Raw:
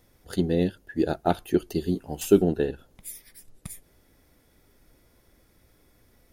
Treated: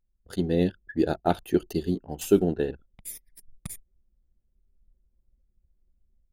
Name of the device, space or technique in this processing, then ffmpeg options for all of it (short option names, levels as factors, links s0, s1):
voice memo with heavy noise removal: -af "anlmdn=0.0398,dynaudnorm=f=310:g=3:m=2.24,volume=0.531"